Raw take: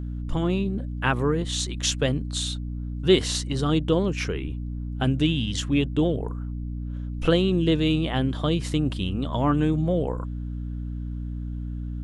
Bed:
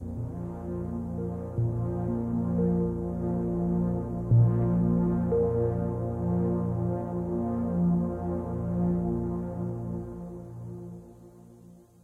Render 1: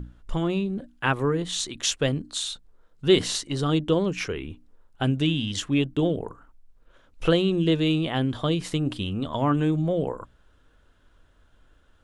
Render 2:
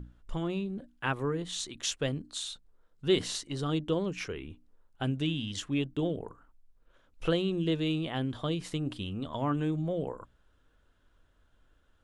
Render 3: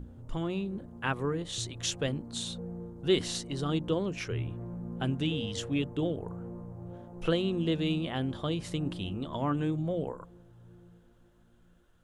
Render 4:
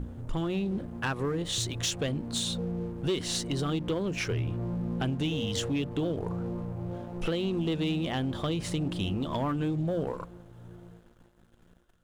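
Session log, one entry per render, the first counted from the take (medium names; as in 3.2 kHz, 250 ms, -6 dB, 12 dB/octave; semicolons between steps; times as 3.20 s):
hum notches 60/120/180/240/300 Hz
trim -7.5 dB
add bed -14.5 dB
compression 4:1, threshold -33 dBFS, peak gain reduction 11 dB; waveshaping leveller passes 2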